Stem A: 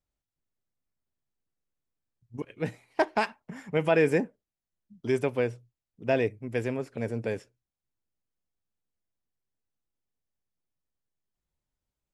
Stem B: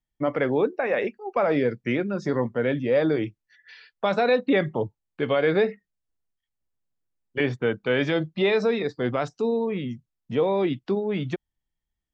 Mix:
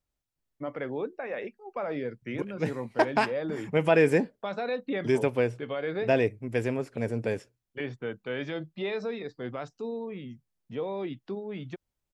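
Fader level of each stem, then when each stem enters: +1.5 dB, -10.5 dB; 0.00 s, 0.40 s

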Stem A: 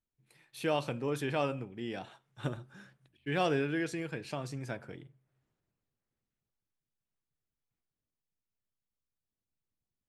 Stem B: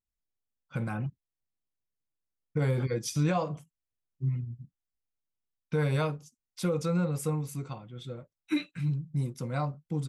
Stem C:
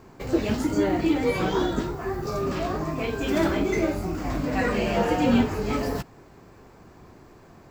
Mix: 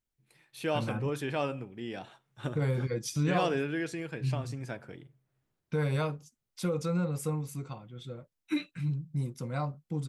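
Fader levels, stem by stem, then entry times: 0.0 dB, -2.0 dB, mute; 0.00 s, 0.00 s, mute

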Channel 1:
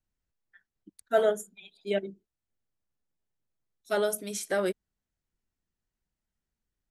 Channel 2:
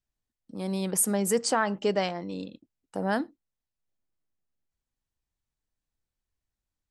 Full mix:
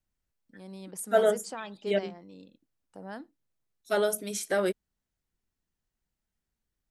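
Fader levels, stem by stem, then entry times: +1.0 dB, -14.0 dB; 0.00 s, 0.00 s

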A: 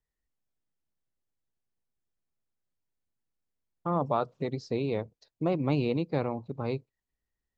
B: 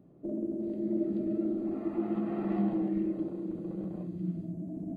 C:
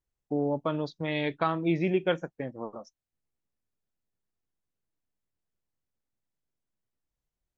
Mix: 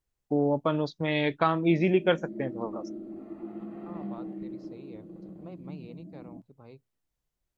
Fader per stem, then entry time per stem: -18.5 dB, -8.0 dB, +3.0 dB; 0.00 s, 1.45 s, 0.00 s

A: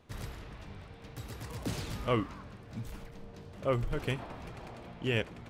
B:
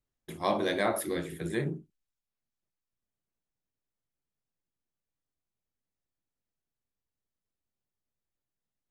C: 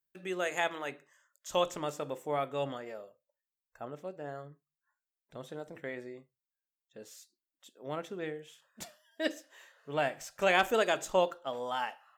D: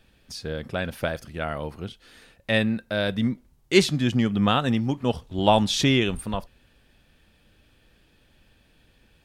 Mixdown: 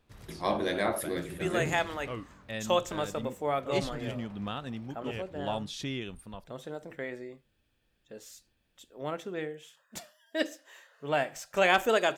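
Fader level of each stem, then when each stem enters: -9.5 dB, -1.0 dB, +2.5 dB, -15.5 dB; 0.00 s, 0.00 s, 1.15 s, 0.00 s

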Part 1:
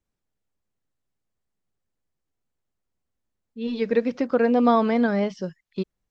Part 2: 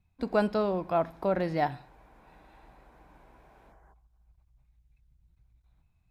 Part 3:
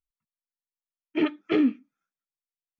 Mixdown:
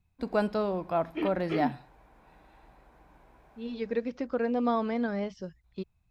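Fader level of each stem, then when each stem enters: -9.0 dB, -1.5 dB, -8.0 dB; 0.00 s, 0.00 s, 0.00 s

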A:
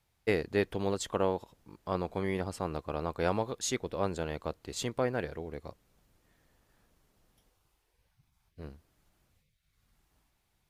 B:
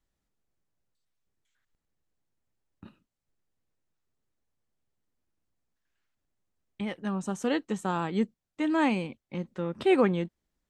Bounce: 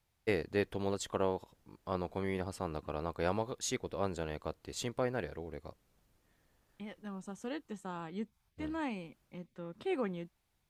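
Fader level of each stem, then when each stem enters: -3.5 dB, -12.5 dB; 0.00 s, 0.00 s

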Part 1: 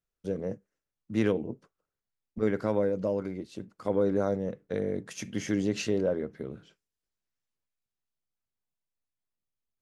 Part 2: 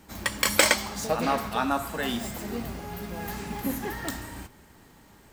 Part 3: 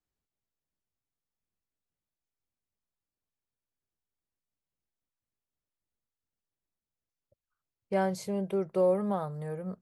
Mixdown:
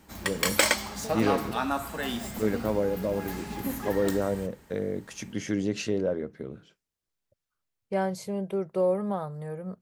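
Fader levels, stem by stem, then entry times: 0.0 dB, -2.5 dB, +0.5 dB; 0.00 s, 0.00 s, 0.00 s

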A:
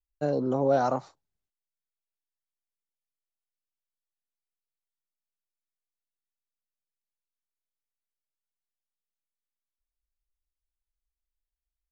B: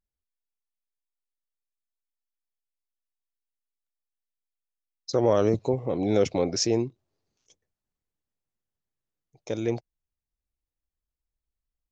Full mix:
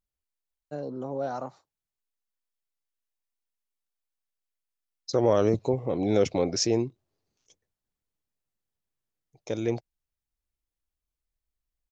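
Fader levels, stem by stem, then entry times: -8.0 dB, -0.5 dB; 0.50 s, 0.00 s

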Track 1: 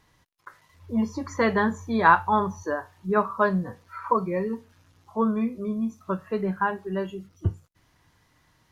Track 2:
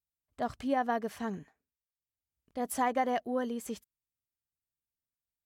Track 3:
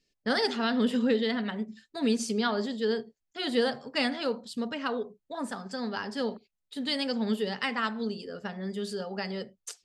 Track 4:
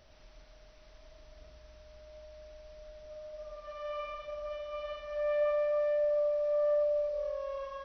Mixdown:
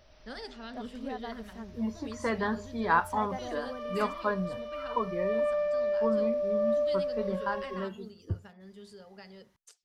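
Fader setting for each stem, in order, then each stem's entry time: -8.0 dB, -10.5 dB, -15.5 dB, +1.0 dB; 0.85 s, 0.35 s, 0.00 s, 0.00 s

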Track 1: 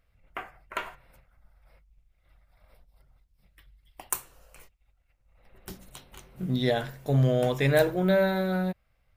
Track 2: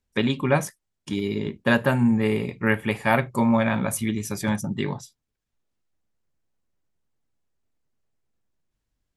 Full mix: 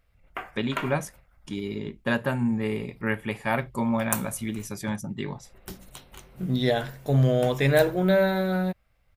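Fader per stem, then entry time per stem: +2.0 dB, -5.5 dB; 0.00 s, 0.40 s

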